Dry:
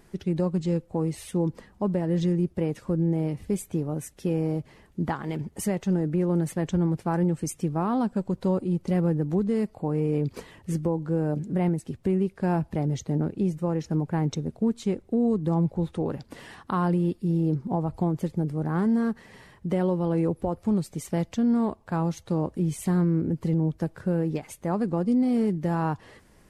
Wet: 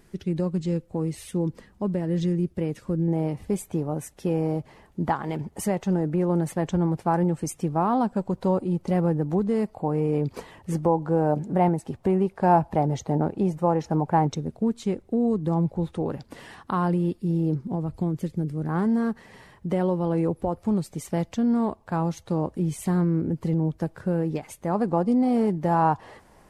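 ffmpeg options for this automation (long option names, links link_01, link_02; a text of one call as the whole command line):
ffmpeg -i in.wav -af "asetnsamples=nb_out_samples=441:pad=0,asendcmd='3.08 equalizer g 7;10.72 equalizer g 14;14.27 equalizer g 2;17.61 equalizer g -7.5;18.69 equalizer g 3;24.75 equalizer g 10.5',equalizer=frequency=820:width_type=o:width=1.2:gain=-3.5" out.wav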